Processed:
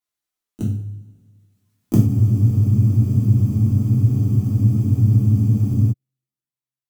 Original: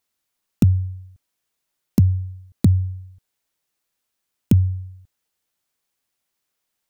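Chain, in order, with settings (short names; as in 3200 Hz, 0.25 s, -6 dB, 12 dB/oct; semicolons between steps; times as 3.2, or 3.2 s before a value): gliding pitch shift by +9 st starting unshifted; Doppler pass-by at 1.83, 11 m/s, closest 5.3 m; two-slope reverb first 0.49 s, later 1.9 s, from -19 dB, DRR -5 dB; spectral freeze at 2.1, 3.81 s; gain -2 dB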